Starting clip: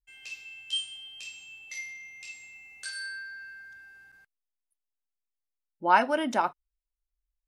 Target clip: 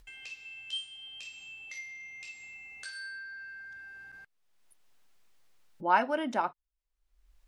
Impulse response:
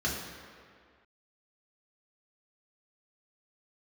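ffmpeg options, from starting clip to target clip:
-af "lowpass=f=3900:p=1,acompressor=mode=upward:threshold=0.0158:ratio=2.5,volume=0.668"

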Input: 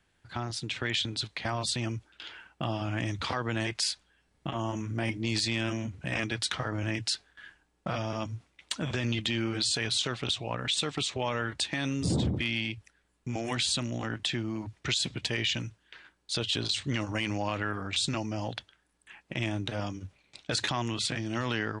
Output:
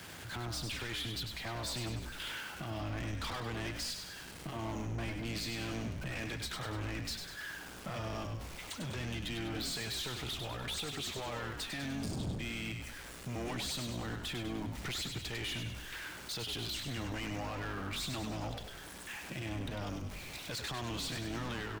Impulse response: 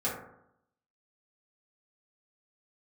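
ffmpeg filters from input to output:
-filter_complex "[0:a]aeval=exprs='val(0)+0.5*0.00668*sgn(val(0))':c=same,highpass=f=70:w=0.5412,highpass=f=70:w=1.3066,alimiter=level_in=1.19:limit=0.0631:level=0:latency=1:release=335,volume=0.841,asoftclip=type=tanh:threshold=0.0141,asplit=8[s0][s1][s2][s3][s4][s5][s6][s7];[s1]adelay=99,afreqshift=-51,volume=0.501[s8];[s2]adelay=198,afreqshift=-102,volume=0.269[s9];[s3]adelay=297,afreqshift=-153,volume=0.146[s10];[s4]adelay=396,afreqshift=-204,volume=0.0785[s11];[s5]adelay=495,afreqshift=-255,volume=0.0427[s12];[s6]adelay=594,afreqshift=-306,volume=0.0229[s13];[s7]adelay=693,afreqshift=-357,volume=0.0124[s14];[s0][s8][s9][s10][s11][s12][s13][s14]amix=inputs=8:normalize=0,volume=1.12"

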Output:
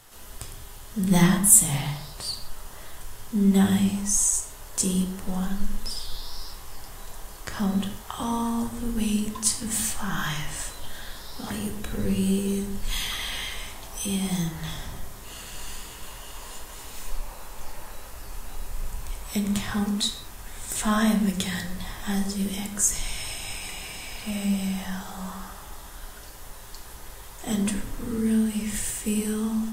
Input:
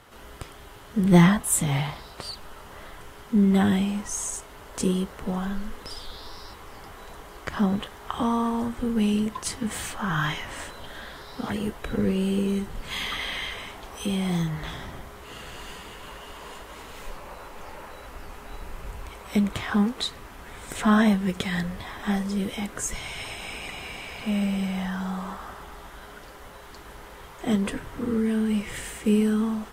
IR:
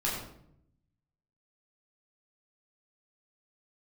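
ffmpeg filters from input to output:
-filter_complex "[0:a]bass=f=250:g=-1,treble=f=4000:g=15,asplit=2[s0][s1];[1:a]atrim=start_sample=2205,afade=t=out:st=0.28:d=0.01,atrim=end_sample=12789,lowshelf=f=110:g=10[s2];[s1][s2]afir=irnorm=-1:irlink=0,volume=0.376[s3];[s0][s3]amix=inputs=2:normalize=0,volume=0.422"

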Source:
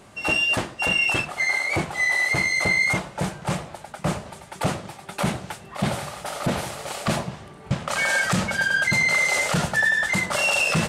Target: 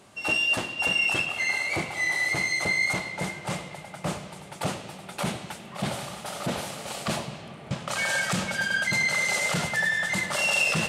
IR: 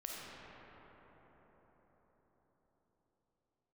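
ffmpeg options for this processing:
-filter_complex "[0:a]highpass=f=110:p=1,asplit=2[s0][s1];[s1]highshelf=f=2000:t=q:w=1.5:g=8.5[s2];[1:a]atrim=start_sample=2205,asetrate=35721,aresample=44100[s3];[s2][s3]afir=irnorm=-1:irlink=0,volume=0.299[s4];[s0][s4]amix=inputs=2:normalize=0,volume=0.501"

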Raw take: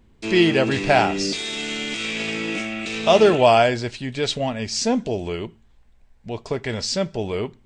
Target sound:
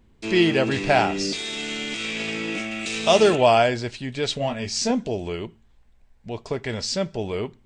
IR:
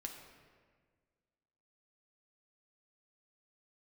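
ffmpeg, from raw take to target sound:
-filter_complex "[0:a]asettb=1/sr,asplit=3[s0][s1][s2];[s0]atrim=end=2.714[s3];[s1]atrim=start=2.71:end=3.36,asetpts=PTS-STARTPTS,afade=t=in:d=0.004:c=qsin,afade=t=out:st=0.646:d=0.004:c=qsin,aemphasis=mode=production:type=50fm[s4];[s2]atrim=start=3.356[s5];[s3][s4]acrossfade=d=0.004:c1=hsin:c2=qsin[s6];[s6][s5]acrossfade=d=0.004:c1=qsin:c2=hsin,asettb=1/sr,asplit=3[s7][s8][s9];[s7]atrim=end=4.394[s10];[s8]atrim=start=4.39:end=4.91,asetpts=PTS-STARTPTS,afade=t=in:d=0.004:c=qsin,afade=t=out:st=0.516:d=0.004:c=qsin,asplit=2[s11][s12];[s12]adelay=21,volume=0.562[s13];[s11][s13]amix=inputs=2:normalize=0,atrim=end_sample=22932[s14];[s9]atrim=start=4.906[s15];[s10][s14]acrossfade=d=0.004:c1=hsin:c2=qsin[s16];[s16][s15]acrossfade=d=0.004:c1=qsin:c2=hsin,volume=0.794"

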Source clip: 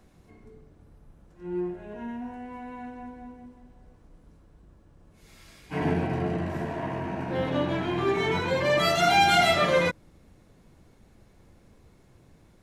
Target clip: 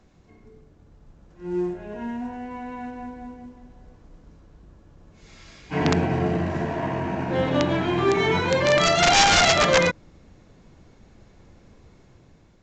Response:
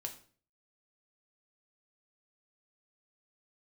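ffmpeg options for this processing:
-af "dynaudnorm=f=800:g=3:m=1.78,aeval=exprs='(mod(3.16*val(0)+1,2)-1)/3.16':c=same" -ar 16000 -c:a pcm_mulaw

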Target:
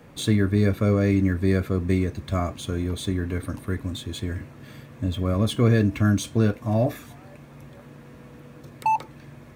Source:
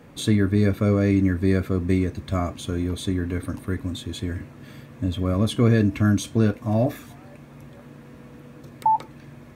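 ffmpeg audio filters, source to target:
-filter_complex "[0:a]acrossover=split=610|2100[s0][s1][s2];[s1]volume=10.6,asoftclip=hard,volume=0.0944[s3];[s2]acrusher=bits=4:mode=log:mix=0:aa=0.000001[s4];[s0][s3][s4]amix=inputs=3:normalize=0,equalizer=f=260:w=2.4:g=-3"

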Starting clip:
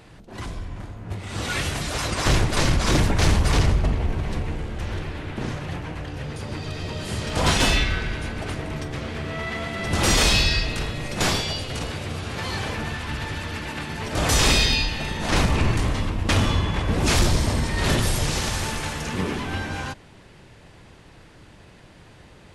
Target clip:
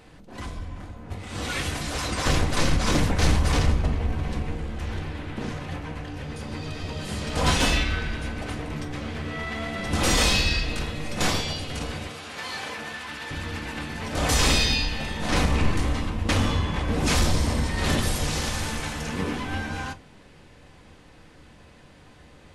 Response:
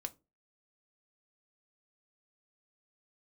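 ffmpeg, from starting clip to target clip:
-filter_complex "[0:a]asettb=1/sr,asplit=3[s0][s1][s2];[s0]atrim=end=12.074[s3];[s1]atrim=start=12.07:end=13.31,asetpts=PTS-STARTPTS,afade=t=in:d=0.004:c=qsin,afade=t=out:st=1.236:d=0.004:c=qsin,highpass=f=620:p=1[s4];[s2]atrim=start=13.306[s5];[s3][s4]acrossfade=d=0.004:c1=hsin:c2=qsin[s6];[s6][s5]acrossfade=d=0.004:c1=qsin:c2=hsin[s7];[1:a]atrim=start_sample=2205[s8];[s7][s8]afir=irnorm=-1:irlink=0"

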